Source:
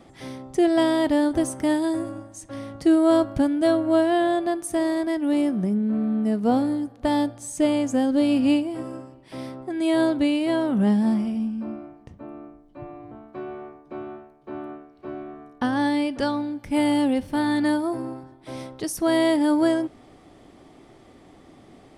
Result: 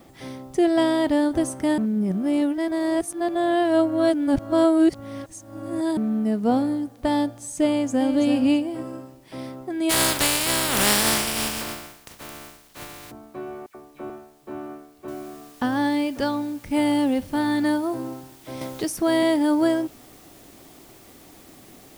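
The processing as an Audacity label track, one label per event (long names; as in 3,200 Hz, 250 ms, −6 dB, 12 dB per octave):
1.780000	5.970000	reverse
7.670000	8.130000	delay throw 330 ms, feedback 20%, level −7.5 dB
9.890000	13.100000	compressing power law on the bin magnitudes exponent 0.24
13.660000	14.100000	all-pass dispersion lows, late by 86 ms, half as late at 2,900 Hz
15.080000	15.080000	noise floor change −64 dB −52 dB
18.610000	19.230000	multiband upward and downward compressor depth 40%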